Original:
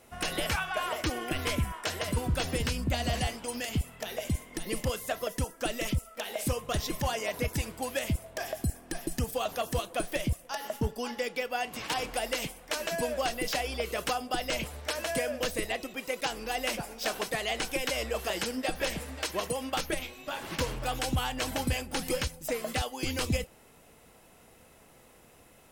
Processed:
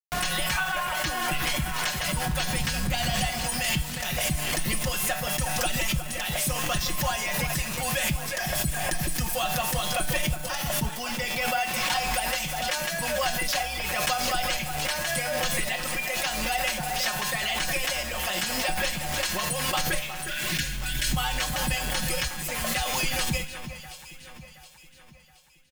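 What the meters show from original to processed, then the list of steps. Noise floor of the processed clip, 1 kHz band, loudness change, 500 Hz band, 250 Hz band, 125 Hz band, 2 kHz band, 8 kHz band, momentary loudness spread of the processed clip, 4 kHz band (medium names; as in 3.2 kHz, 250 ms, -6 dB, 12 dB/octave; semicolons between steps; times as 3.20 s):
-48 dBFS, +5.5 dB, +6.0 dB, -0.5 dB, +1.0 dB, +2.5 dB, +7.5 dB, +9.0 dB, 3 LU, +7.0 dB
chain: spectral selection erased 20.21–21.12 s, 370–1400 Hz; peaking EQ 380 Hz -12.5 dB 1.3 oct; comb 5.5 ms, depth 95%; in parallel at 0 dB: gain riding 2 s; on the sum: bit crusher 6-bit; feedback comb 150 Hz, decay 0.56 s, harmonics all, mix 70%; on a send: echo whose repeats swap between lows and highs 361 ms, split 2.5 kHz, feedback 65%, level -10 dB; on the sum: swell ahead of each attack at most 22 dB/s; trim +4.5 dB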